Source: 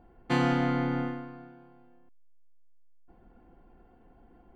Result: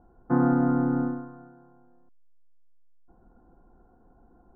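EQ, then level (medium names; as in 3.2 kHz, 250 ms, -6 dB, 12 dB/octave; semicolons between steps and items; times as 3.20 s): Chebyshev low-pass 1.5 kHz, order 5; dynamic bell 260 Hz, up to +7 dB, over -41 dBFS, Q 1.2; 0.0 dB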